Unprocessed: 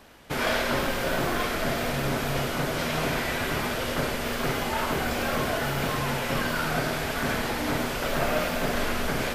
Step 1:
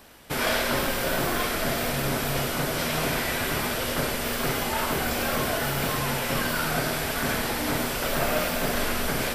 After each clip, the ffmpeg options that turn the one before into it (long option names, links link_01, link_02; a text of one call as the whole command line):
ffmpeg -i in.wav -af "highshelf=frequency=6200:gain=9.5,bandreject=frequency=6600:width=19" out.wav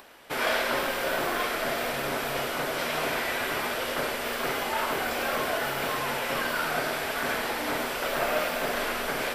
ffmpeg -i in.wav -af "acompressor=mode=upward:threshold=-45dB:ratio=2.5,bass=frequency=250:gain=-14,treble=frequency=4000:gain=-7" out.wav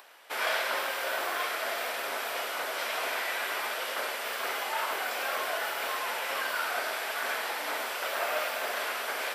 ffmpeg -i in.wav -af "highpass=610,volume=-2dB" out.wav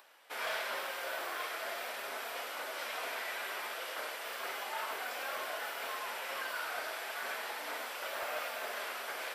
ffmpeg -i in.wav -af "volume=22dB,asoftclip=hard,volume=-22dB,flanger=delay=3.3:depth=3.2:regen=-64:speed=0.37:shape=triangular,volume=-3dB" out.wav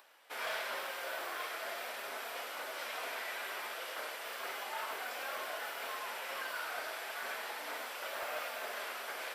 ffmpeg -i in.wav -af "acrusher=bits=8:mode=log:mix=0:aa=0.000001,volume=-1.5dB" out.wav